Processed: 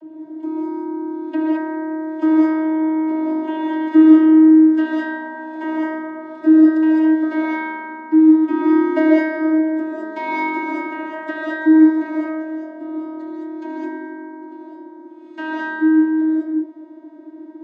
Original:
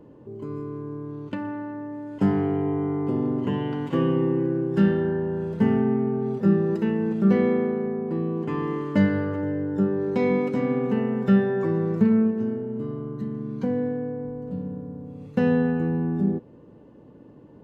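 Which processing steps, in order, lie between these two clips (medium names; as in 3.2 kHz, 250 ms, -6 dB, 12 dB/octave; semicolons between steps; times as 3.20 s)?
vocoder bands 32, saw 315 Hz; gated-style reverb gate 240 ms rising, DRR -3.5 dB; trim +7 dB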